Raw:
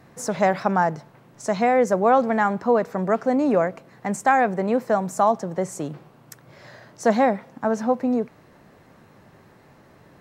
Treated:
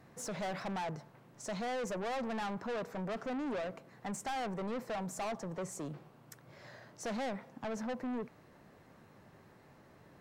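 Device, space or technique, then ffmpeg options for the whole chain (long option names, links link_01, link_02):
saturation between pre-emphasis and de-emphasis: -af "highshelf=frequency=11000:gain=8.5,asoftclip=type=tanh:threshold=-27dB,highshelf=frequency=11000:gain=-8.5,volume=-8dB"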